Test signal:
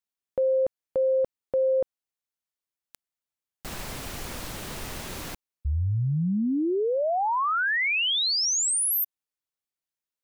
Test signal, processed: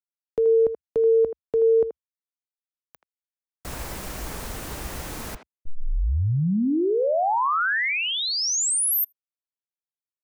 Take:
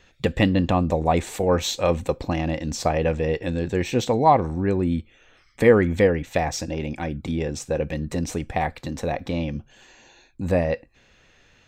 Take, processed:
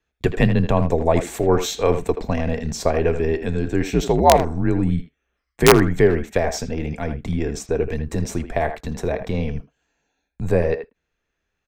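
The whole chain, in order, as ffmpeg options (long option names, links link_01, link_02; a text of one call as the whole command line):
ffmpeg -i in.wav -filter_complex "[0:a]equalizer=frequency=3500:width_type=o:width=1.5:gain=-5,afreqshift=-74,aeval=exprs='(mod(1.68*val(0)+1,2)-1)/1.68':channel_layout=same,agate=range=-22dB:threshold=-47dB:ratio=16:release=43:detection=rms,asplit=2[link_01][link_02];[link_02]adelay=80,highpass=300,lowpass=3400,asoftclip=type=hard:threshold=-13.5dB,volume=-9dB[link_03];[link_01][link_03]amix=inputs=2:normalize=0,volume=3dB" out.wav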